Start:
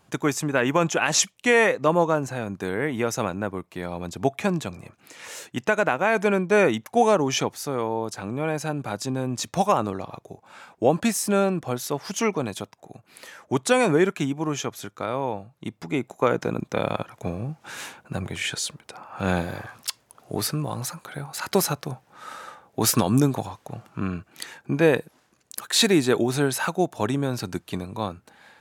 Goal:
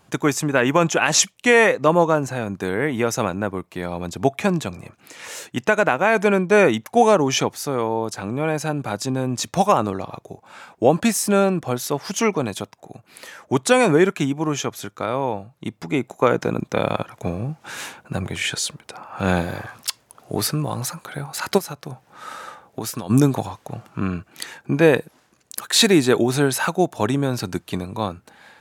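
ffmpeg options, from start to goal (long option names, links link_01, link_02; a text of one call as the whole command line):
ffmpeg -i in.wav -filter_complex "[0:a]asplit=3[link_01][link_02][link_03];[link_01]afade=type=out:start_time=21.57:duration=0.02[link_04];[link_02]acompressor=threshold=-32dB:ratio=4,afade=type=in:start_time=21.57:duration=0.02,afade=type=out:start_time=23.09:duration=0.02[link_05];[link_03]afade=type=in:start_time=23.09:duration=0.02[link_06];[link_04][link_05][link_06]amix=inputs=3:normalize=0,volume=4dB" out.wav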